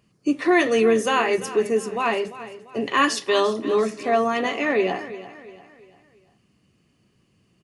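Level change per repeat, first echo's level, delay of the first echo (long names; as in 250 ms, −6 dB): −7.5 dB, −15.0 dB, 344 ms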